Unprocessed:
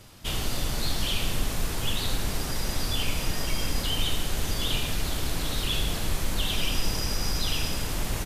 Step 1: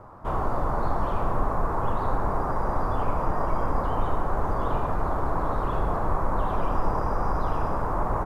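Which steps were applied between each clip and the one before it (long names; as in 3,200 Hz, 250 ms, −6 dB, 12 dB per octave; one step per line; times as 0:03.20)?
drawn EQ curve 240 Hz 0 dB, 1,100 Hz +14 dB, 3,000 Hz −27 dB
level +1.5 dB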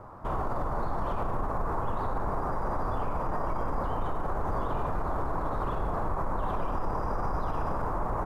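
brickwall limiter −21.5 dBFS, peak gain reduction 9.5 dB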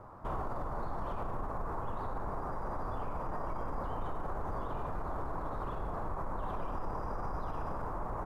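speech leveller 0.5 s
level −7 dB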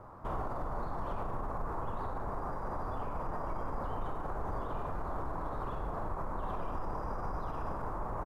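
double-tracking delay 43 ms −11.5 dB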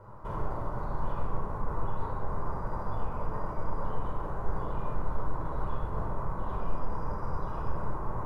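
rectangular room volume 2,100 cubic metres, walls furnished, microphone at 4.8 metres
level −4 dB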